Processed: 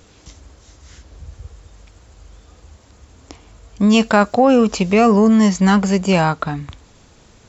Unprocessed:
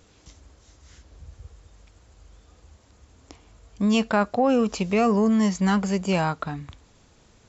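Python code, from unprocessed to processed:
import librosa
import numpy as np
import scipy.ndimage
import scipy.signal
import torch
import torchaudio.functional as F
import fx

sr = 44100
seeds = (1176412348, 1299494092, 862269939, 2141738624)

y = fx.high_shelf(x, sr, hz=6700.0, db=12.0, at=(4.0, 4.45))
y = F.gain(torch.from_numpy(y), 8.0).numpy()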